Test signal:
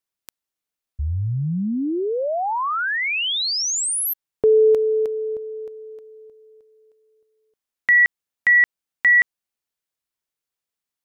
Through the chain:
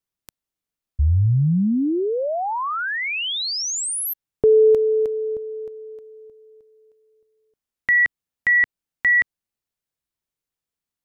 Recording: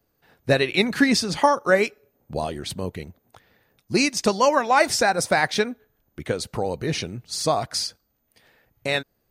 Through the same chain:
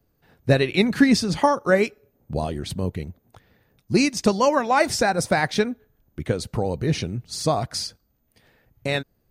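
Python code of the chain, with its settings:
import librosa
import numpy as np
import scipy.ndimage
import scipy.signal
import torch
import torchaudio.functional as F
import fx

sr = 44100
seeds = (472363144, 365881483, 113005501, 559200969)

y = fx.low_shelf(x, sr, hz=300.0, db=10.0)
y = y * librosa.db_to_amplitude(-2.5)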